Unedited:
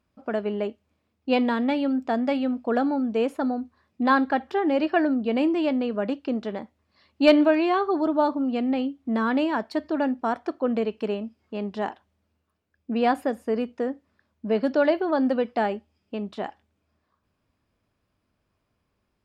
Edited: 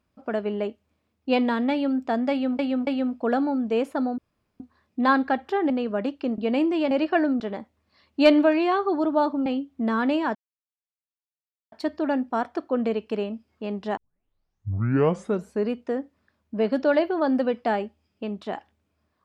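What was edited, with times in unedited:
2.31–2.59 loop, 3 plays
3.62 insert room tone 0.42 s
4.72–5.21 swap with 5.74–6.42
8.48–8.74 cut
9.63 insert silence 1.37 s
11.88 tape start 1.75 s

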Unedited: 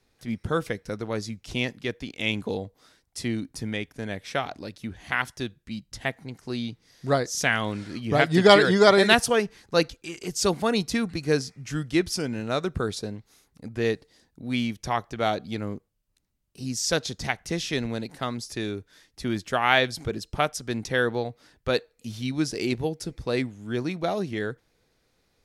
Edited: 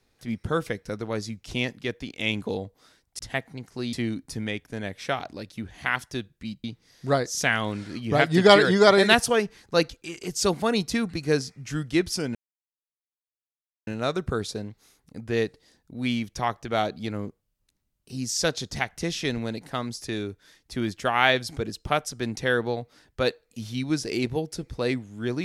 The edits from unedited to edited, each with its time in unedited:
5.9–6.64 move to 3.19
12.35 insert silence 1.52 s

